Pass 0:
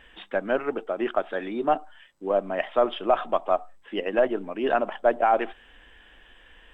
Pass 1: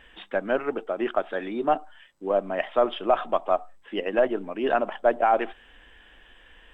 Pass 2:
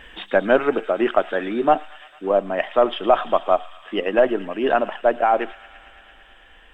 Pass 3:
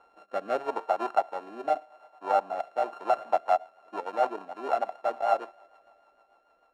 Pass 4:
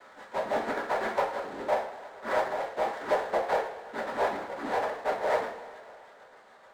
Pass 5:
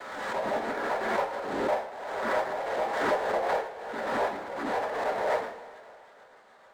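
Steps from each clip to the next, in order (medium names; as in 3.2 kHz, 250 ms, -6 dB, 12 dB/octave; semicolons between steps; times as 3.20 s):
no audible change
gain riding 2 s; feedback echo behind a high-pass 112 ms, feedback 83%, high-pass 2.4 kHz, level -11.5 dB; trim +5 dB
sorted samples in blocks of 32 samples; rotary cabinet horn 0.8 Hz, later 6.7 Hz, at 2.69 s; band-pass filter 750 Hz, Q 3.6; trim +1.5 dB
noise-vocoded speech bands 6; two-slope reverb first 0.38 s, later 1.5 s, from -18 dB, DRR -1.5 dB; power-law waveshaper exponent 0.7; trim -8.5 dB
swell ahead of each attack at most 37 dB/s; trim -1.5 dB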